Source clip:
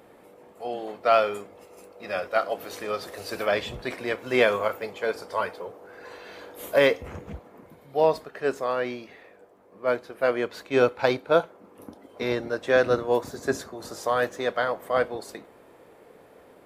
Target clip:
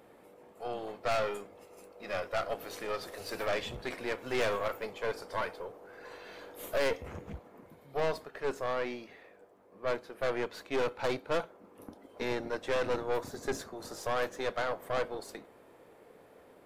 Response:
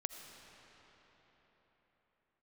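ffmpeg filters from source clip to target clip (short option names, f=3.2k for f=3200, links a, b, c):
-af "aeval=exprs='(tanh(15.8*val(0)+0.55)-tanh(0.55))/15.8':c=same,volume=-2.5dB"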